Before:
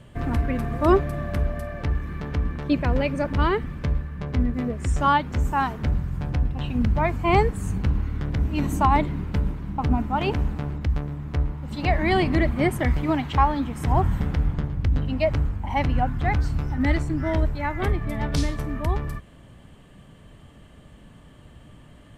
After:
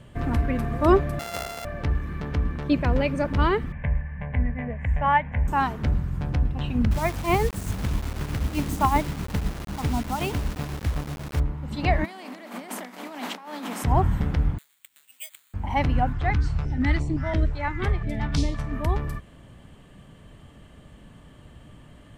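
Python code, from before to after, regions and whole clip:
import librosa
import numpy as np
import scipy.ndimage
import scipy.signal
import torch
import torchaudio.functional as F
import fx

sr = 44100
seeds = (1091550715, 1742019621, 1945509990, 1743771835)

y = fx.chain(x, sr, fx.sample_sort(block=64),
    fx.highpass(hz=220.0, slope=6),
    fx.low_shelf(hz=360.0, db=-8.0), at=(1.19, 1.65))
y = fx.chain(y, sr, fx.lowpass_res(hz=1900.0, q=2.3),
    fx.fixed_phaser(hz=1300.0, stages=6), at=(3.72, 5.48))
y = fx.chain(y, sr, fx.tremolo_shape(shape='triangle', hz=7.9, depth_pct=65),
    fx.quant_dither(seeds[0], bits=6, dither='none'), at=(6.91, 11.4))
y = fx.spec_flatten(y, sr, power=0.61, at=(12.04, 13.83), fade=0.02)
y = fx.over_compress(y, sr, threshold_db=-31.0, ratio=-1.0, at=(12.04, 13.83), fade=0.02)
y = fx.cheby_ripple_highpass(y, sr, hz=180.0, ripple_db=6, at=(12.04, 13.83), fade=0.02)
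y = fx.chain(y, sr, fx.ladder_bandpass(hz=3800.0, resonance_pct=30),
    fx.resample_bad(factor=8, down='filtered', up='zero_stuff'), at=(14.58, 15.54))
y = fx.chain(y, sr, fx.lowpass(hz=7500.0, slope=12),
    fx.filter_held_notch(hz=5.8, low_hz=210.0, high_hz=1500.0), at=(16.13, 18.73))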